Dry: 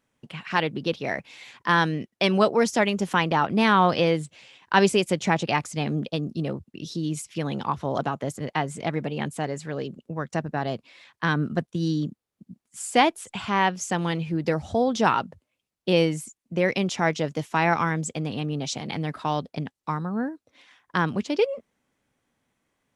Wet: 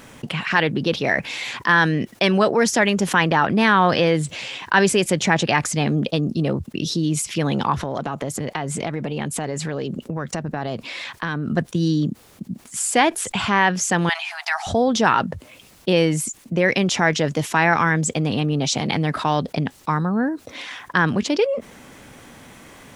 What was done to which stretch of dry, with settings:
0:07.78–0:11.48: downward compressor 4 to 1, threshold −36 dBFS
0:14.09–0:14.67: linear-phase brick-wall high-pass 660 Hz
whole clip: dynamic equaliser 1,700 Hz, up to +7 dB, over −42 dBFS, Q 3.6; envelope flattener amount 50%

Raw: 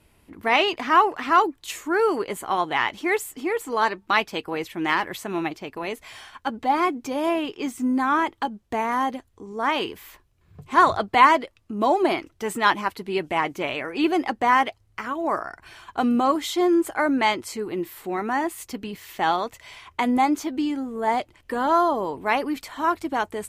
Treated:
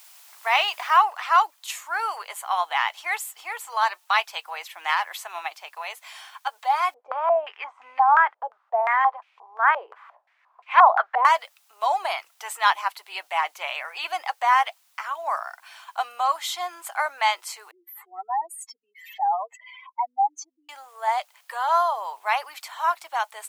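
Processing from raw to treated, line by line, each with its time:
0:00.97: noise floor change −51 dB −64 dB
0:06.94–0:11.25: low-pass on a step sequencer 5.7 Hz 520–2,500 Hz
0:17.71–0:20.69: expanding power law on the bin magnitudes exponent 3.6
whole clip: Butterworth high-pass 710 Hz 36 dB per octave; parametric band 1,800 Hz −2.5 dB; level +1 dB

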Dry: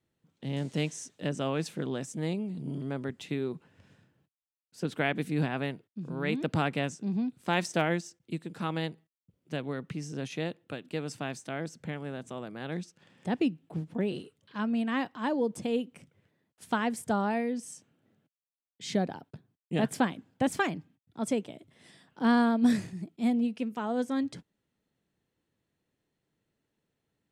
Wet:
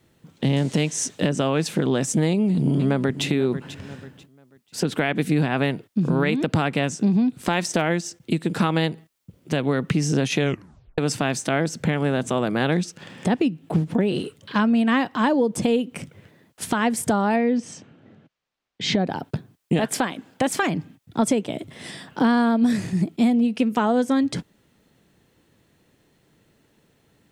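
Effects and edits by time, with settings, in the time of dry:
0:02.30–0:03.25: delay throw 490 ms, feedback 25%, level −14.5 dB
0:10.37: tape stop 0.61 s
0:17.36–0:19.06: high-frequency loss of the air 160 metres
0:19.79–0:20.63: parametric band 74 Hz −14 dB 3 octaves
whole clip: downward compressor 10 to 1, threshold −36 dBFS; boost into a limiter +28 dB; level −8.5 dB

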